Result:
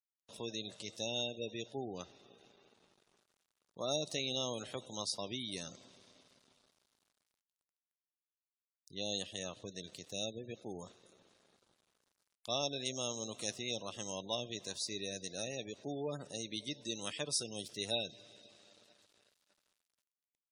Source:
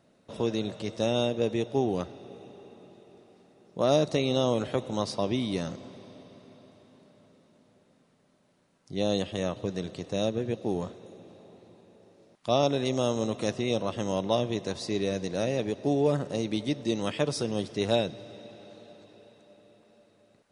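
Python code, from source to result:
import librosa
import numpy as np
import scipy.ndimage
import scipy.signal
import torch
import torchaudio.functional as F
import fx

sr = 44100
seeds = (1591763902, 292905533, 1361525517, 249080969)

y = np.sign(x) * np.maximum(np.abs(x) - 10.0 ** (-53.5 / 20.0), 0.0)
y = F.preemphasis(torch.from_numpy(y), 0.9).numpy()
y = fx.spec_gate(y, sr, threshold_db=-20, keep='strong')
y = y * librosa.db_to_amplitude(4.0)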